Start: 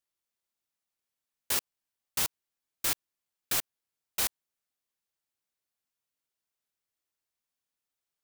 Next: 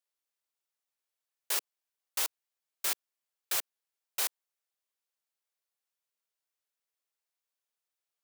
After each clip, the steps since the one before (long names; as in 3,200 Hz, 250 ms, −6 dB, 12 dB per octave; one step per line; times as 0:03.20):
high-pass filter 380 Hz 24 dB per octave
level −2 dB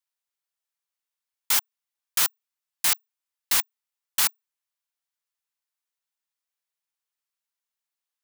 frequency shifter +420 Hz
brickwall limiter −21.5 dBFS, peak gain reduction 4 dB
leveller curve on the samples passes 3
level +6 dB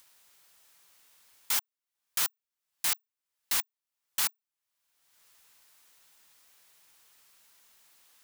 upward compression, threshold −30 dBFS
level −6.5 dB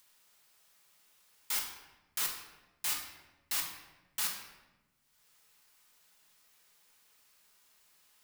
rectangular room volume 570 cubic metres, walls mixed, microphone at 1.4 metres
level −6.5 dB